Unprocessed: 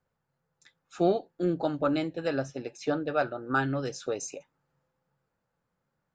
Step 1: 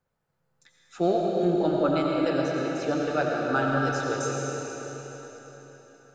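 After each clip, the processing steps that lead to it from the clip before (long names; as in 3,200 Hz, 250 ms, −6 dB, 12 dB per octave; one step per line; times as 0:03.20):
comb and all-pass reverb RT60 4.3 s, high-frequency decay 0.95×, pre-delay 50 ms, DRR −2.5 dB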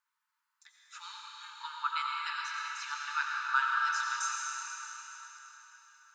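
linear-phase brick-wall high-pass 870 Hz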